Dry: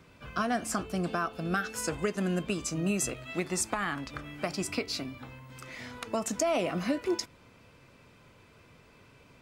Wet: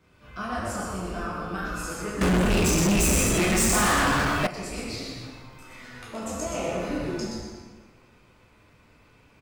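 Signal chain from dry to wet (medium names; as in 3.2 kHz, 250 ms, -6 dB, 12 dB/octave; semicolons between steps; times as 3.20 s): frequency-shifting echo 123 ms, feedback 35%, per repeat -140 Hz, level -4 dB; plate-style reverb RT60 1.5 s, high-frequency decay 0.65×, DRR -7 dB; 2.21–4.47 s: waveshaping leveller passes 5; trim -9 dB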